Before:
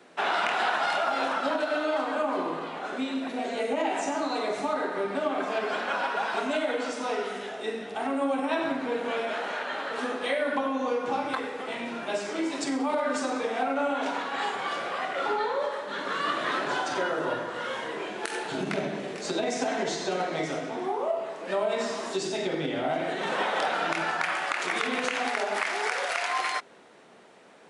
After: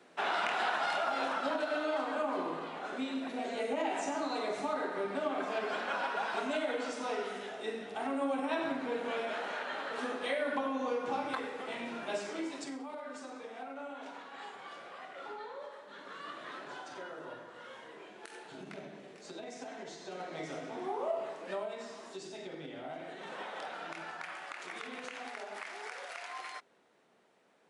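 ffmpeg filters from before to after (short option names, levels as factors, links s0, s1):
-af "volume=1.88,afade=t=out:st=12.17:d=0.7:silence=0.298538,afade=t=in:st=20.01:d=1.25:silence=0.266073,afade=t=out:st=21.26:d=0.49:silence=0.316228"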